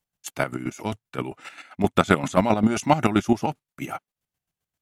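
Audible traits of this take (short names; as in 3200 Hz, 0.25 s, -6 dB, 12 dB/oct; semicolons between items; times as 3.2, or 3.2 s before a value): chopped level 7.6 Hz, depth 65%, duty 30%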